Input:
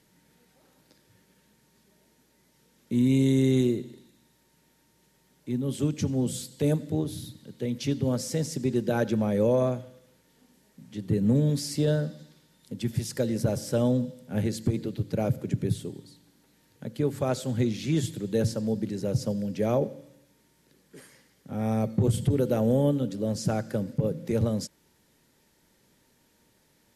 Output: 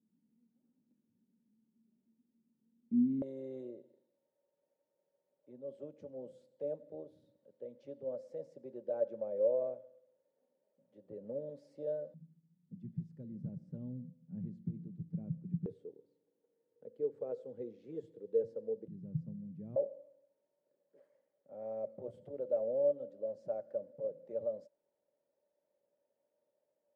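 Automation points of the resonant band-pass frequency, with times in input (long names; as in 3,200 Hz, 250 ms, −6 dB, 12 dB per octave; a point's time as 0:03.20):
resonant band-pass, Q 12
230 Hz
from 0:03.22 560 Hz
from 0:12.14 170 Hz
from 0:15.66 470 Hz
from 0:18.88 160 Hz
from 0:19.76 580 Hz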